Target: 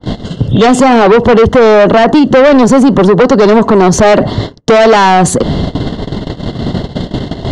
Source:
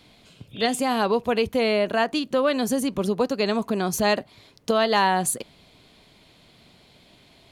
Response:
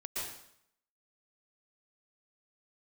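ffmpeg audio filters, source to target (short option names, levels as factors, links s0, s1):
-filter_complex "[0:a]tiltshelf=f=760:g=7.5,agate=range=0.0112:threshold=0.00355:ratio=16:detection=peak,asuperstop=centerf=2400:order=12:qfactor=4.2,acrossover=split=340[s0][s1];[s0]acompressor=threshold=0.0316:ratio=6[s2];[s2][s1]amix=inputs=2:normalize=0,asoftclip=type=tanh:threshold=0.0473,lowpass=f=7200:w=0.5412,lowpass=f=7200:w=1.3066,areverse,acompressor=mode=upward:threshold=0.0178:ratio=2.5,areverse,alimiter=level_in=42.2:limit=0.891:release=50:level=0:latency=1,adynamicequalizer=threshold=0.0282:dfrequency=3000:dqfactor=0.7:tfrequency=3000:tqfactor=0.7:attack=5:release=100:ratio=0.375:range=2:mode=cutabove:tftype=highshelf,volume=0.891"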